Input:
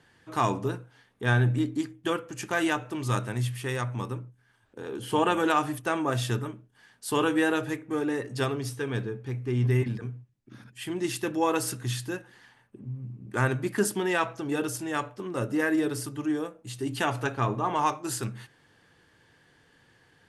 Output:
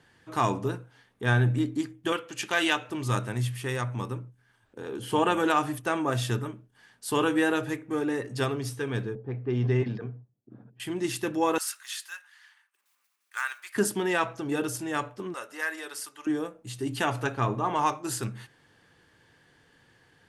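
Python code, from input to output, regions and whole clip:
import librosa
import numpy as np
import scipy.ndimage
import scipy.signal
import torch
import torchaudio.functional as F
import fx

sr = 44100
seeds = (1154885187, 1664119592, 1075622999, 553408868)

y = fx.chain(x, sr, fx.highpass(hz=300.0, slope=6),
    fx.peak_eq(hz=3300.0, db=9.5, octaves=1.2), at=(2.12, 2.9))
y = fx.chain(y, sr, fx.env_lowpass(base_hz=490.0, full_db=-22.5),
    fx.cabinet(low_hz=110.0, low_slope=12, high_hz=5700.0, hz=(460.0, 700.0, 2200.0), db=(5, 6, -3)), at=(9.15, 10.8))
y = fx.chain(y, sr, fx.block_float(bits=7),
    fx.highpass(hz=1200.0, slope=24), at=(11.58, 13.76))
y = fx.chain(y, sr, fx.highpass(hz=970.0, slope=12),
    fx.clip_hard(threshold_db=-21.0), at=(15.34, 16.27))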